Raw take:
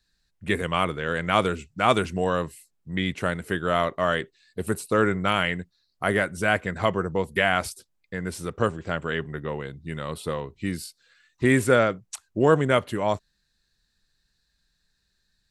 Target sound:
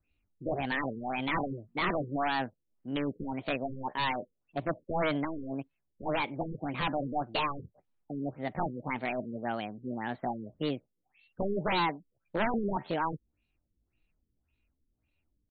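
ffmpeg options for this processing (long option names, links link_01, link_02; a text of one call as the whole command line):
ffmpeg -i in.wav -af "asetrate=68011,aresample=44100,atempo=0.64842,aeval=exprs='0.596*(cos(1*acos(clip(val(0)/0.596,-1,1)))-cos(1*PI/2))+0.00422*(cos(5*acos(clip(val(0)/0.596,-1,1)))-cos(5*PI/2))':channel_layout=same,aresample=16000,aeval=exprs='0.106*(abs(mod(val(0)/0.106+3,4)-2)-1)':channel_layout=same,aresample=44100,afftfilt=real='re*lt(b*sr/1024,500*pow(4600/500,0.5+0.5*sin(2*PI*1.8*pts/sr)))':imag='im*lt(b*sr/1024,500*pow(4600/500,0.5+0.5*sin(2*PI*1.8*pts/sr)))':win_size=1024:overlap=0.75,volume=-3dB" out.wav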